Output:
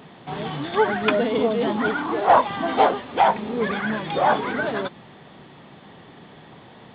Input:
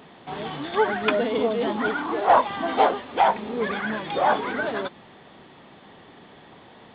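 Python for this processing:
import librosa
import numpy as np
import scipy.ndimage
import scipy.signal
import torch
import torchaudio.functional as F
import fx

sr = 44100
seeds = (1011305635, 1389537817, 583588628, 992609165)

y = fx.peak_eq(x, sr, hz=140.0, db=6.5, octaves=1.0)
y = y * librosa.db_to_amplitude(1.5)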